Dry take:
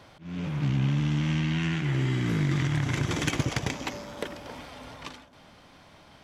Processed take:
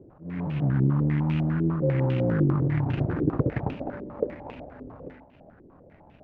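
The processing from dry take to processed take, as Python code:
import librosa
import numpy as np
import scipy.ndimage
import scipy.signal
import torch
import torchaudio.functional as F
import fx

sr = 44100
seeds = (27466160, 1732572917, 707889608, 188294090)

y = scipy.ndimage.median_filter(x, 41, mode='constant')
y = fx.dmg_tone(y, sr, hz=530.0, level_db=-35.0, at=(1.82, 2.42), fade=0.02)
y = fx.filter_held_lowpass(y, sr, hz=10.0, low_hz=380.0, high_hz=2700.0)
y = F.gain(torch.from_numpy(y), 2.0).numpy()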